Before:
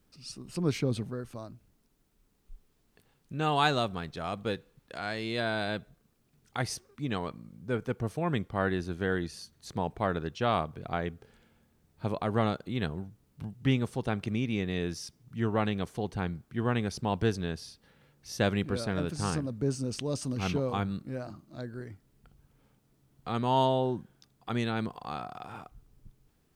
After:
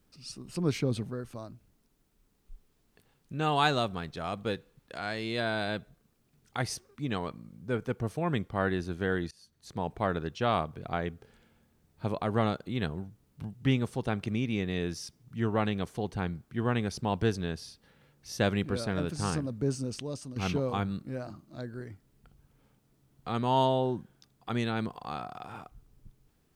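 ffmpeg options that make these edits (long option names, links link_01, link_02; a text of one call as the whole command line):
ffmpeg -i in.wav -filter_complex "[0:a]asplit=3[link_01][link_02][link_03];[link_01]atrim=end=9.31,asetpts=PTS-STARTPTS,afade=type=out:start_time=9.306:duration=0.004:curve=hsin:silence=0.1[link_04];[link_02]atrim=start=9.31:end=20.36,asetpts=PTS-STARTPTS,afade=type=in:duration=0.63:silence=0.1,afade=type=out:start_time=10.43:duration=0.62:silence=0.281838[link_05];[link_03]atrim=start=20.36,asetpts=PTS-STARTPTS,afade=type=in:duration=0.004:curve=hsin:silence=0.281838[link_06];[link_04][link_05][link_06]concat=n=3:v=0:a=1" out.wav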